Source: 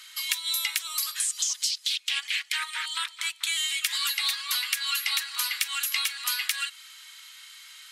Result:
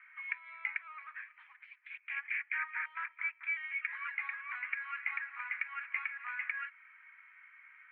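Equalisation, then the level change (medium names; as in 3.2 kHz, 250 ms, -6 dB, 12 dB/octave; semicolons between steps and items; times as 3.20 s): high-pass 1.2 kHz 12 dB/octave; rippled Chebyshev low-pass 2.4 kHz, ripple 3 dB; distance through air 67 m; 0.0 dB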